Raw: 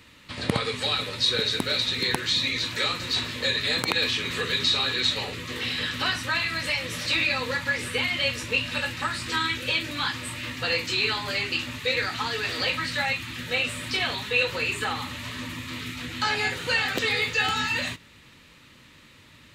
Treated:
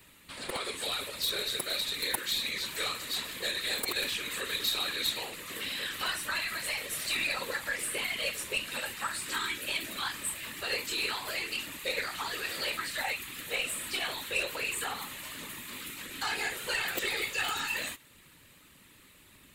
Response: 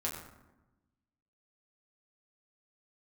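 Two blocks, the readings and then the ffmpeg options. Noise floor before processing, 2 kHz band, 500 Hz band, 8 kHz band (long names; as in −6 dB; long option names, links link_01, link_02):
−53 dBFS, −7.5 dB, −8.5 dB, +1.5 dB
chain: -filter_complex "[0:a]acrossover=split=290[link_01][link_02];[link_01]acompressor=threshold=-50dB:ratio=5[link_03];[link_02]asoftclip=type=tanh:threshold=-15dB[link_04];[link_03][link_04]amix=inputs=2:normalize=0,aexciter=amount=6.3:drive=2.6:freq=7800,aeval=exprs='0.944*(cos(1*acos(clip(val(0)/0.944,-1,1)))-cos(1*PI/2))+0.0944*(cos(3*acos(clip(val(0)/0.944,-1,1)))-cos(3*PI/2))+0.0188*(cos(8*acos(clip(val(0)/0.944,-1,1)))-cos(8*PI/2))':channel_layout=same,afftfilt=real='hypot(re,im)*cos(2*PI*random(0))':imag='hypot(re,im)*sin(2*PI*random(1))':win_size=512:overlap=0.75,volume=2.5dB"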